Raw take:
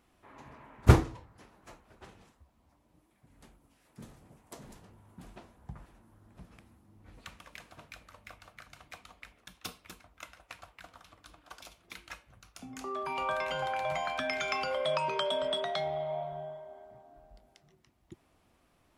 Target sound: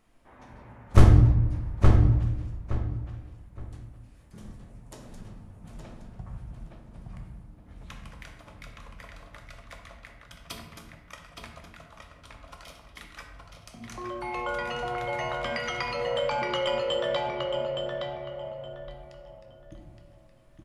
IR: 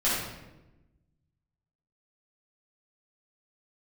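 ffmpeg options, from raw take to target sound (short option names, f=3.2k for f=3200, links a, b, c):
-filter_complex "[0:a]aeval=exprs='clip(val(0),-1,0.168)':c=same,asetrate=40517,aresample=44100,asplit=2[a][b];[b]adelay=868,lowpass=f=3.9k:p=1,volume=-3.5dB,asplit=2[c][d];[d]adelay=868,lowpass=f=3.9k:p=1,volume=0.25,asplit=2[e][f];[f]adelay=868,lowpass=f=3.9k:p=1,volume=0.25,asplit=2[g][h];[h]adelay=868,lowpass=f=3.9k:p=1,volume=0.25[i];[a][c][e][g][i]amix=inputs=5:normalize=0,asplit=2[j][k];[1:a]atrim=start_sample=2205,lowshelf=f=170:g=12[l];[k][l]afir=irnorm=-1:irlink=0,volume=-15dB[m];[j][m]amix=inputs=2:normalize=0,volume=-1dB"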